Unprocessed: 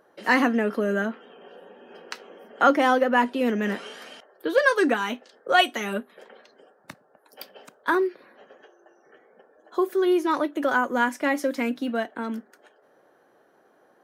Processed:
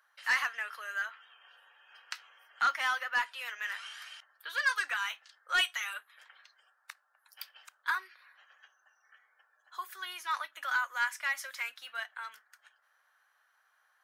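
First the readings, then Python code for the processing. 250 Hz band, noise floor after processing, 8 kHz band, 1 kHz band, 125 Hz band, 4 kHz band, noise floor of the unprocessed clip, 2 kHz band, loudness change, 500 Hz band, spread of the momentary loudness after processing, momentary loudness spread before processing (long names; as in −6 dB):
below −40 dB, −73 dBFS, −2.5 dB, −11.0 dB, can't be measured, −4.5 dB, −61 dBFS, −5.0 dB, −10.0 dB, −31.0 dB, 17 LU, 14 LU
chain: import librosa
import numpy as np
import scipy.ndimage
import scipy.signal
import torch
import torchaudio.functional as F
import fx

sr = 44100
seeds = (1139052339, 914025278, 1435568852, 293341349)

y = scipy.signal.sosfilt(scipy.signal.butter(4, 1200.0, 'highpass', fs=sr, output='sos'), x)
y = 10.0 ** (-18.5 / 20.0) * np.tanh(y / 10.0 ** (-18.5 / 20.0))
y = y * 10.0 ** (-2.5 / 20.0)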